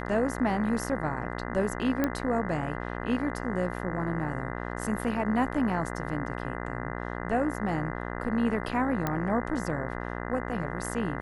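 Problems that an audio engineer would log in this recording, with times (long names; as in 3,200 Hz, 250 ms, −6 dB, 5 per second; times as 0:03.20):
mains buzz 60 Hz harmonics 34 −35 dBFS
0:02.04: click −13 dBFS
0:09.07: click −14 dBFS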